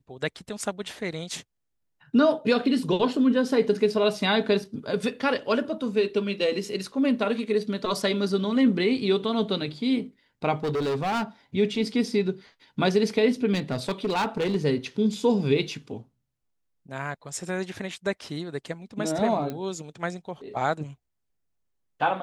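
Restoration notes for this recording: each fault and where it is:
0:10.63–0:11.23: clipping −23.5 dBFS
0:13.53–0:14.56: clipping −21.5 dBFS
0:19.50: click −19 dBFS

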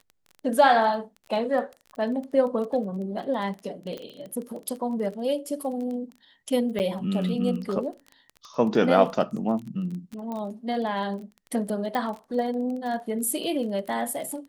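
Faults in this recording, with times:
surface crackle 18 per second −33 dBFS
0:03.98: click −24 dBFS
0:06.79–0:06.80: drop-out 9 ms
0:10.32: click −22 dBFS
0:11.95: click −17 dBFS

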